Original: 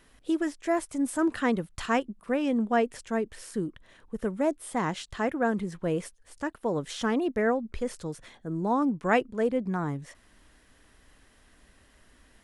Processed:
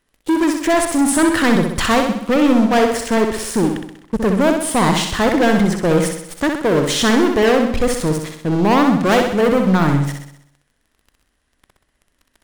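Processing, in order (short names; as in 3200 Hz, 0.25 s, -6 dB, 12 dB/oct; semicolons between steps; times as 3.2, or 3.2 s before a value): sample leveller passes 5; flutter echo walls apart 10.9 m, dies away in 0.71 s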